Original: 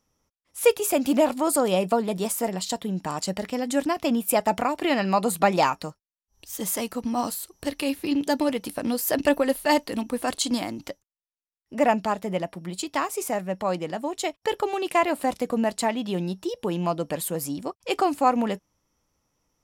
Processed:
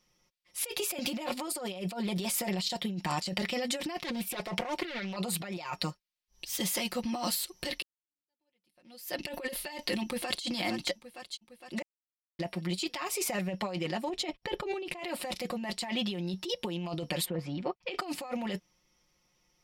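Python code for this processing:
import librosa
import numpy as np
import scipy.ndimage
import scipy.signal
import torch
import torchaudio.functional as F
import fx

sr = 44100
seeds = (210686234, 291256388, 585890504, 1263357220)

y = fx.doppler_dist(x, sr, depth_ms=0.65, at=(3.96, 5.16))
y = fx.echo_throw(y, sr, start_s=10.03, length_s=0.41, ms=460, feedback_pct=60, wet_db=-15.5)
y = fx.tilt_eq(y, sr, slope=-2.5, at=(14.09, 14.99))
y = fx.lowpass(y, sr, hz=fx.line((17.24, 1500.0), (17.97, 3400.0)), slope=12, at=(17.24, 17.97), fade=0.02)
y = fx.edit(y, sr, fx.fade_in_span(start_s=7.82, length_s=1.48, curve='exp'),
    fx.silence(start_s=11.82, length_s=0.57), tone=tone)
y = fx.band_shelf(y, sr, hz=3200.0, db=8.5, octaves=1.7)
y = y + 0.82 * np.pad(y, (int(5.6 * sr / 1000.0), 0))[:len(y)]
y = fx.over_compress(y, sr, threshold_db=-27.0, ratio=-1.0)
y = y * 10.0 ** (-7.5 / 20.0)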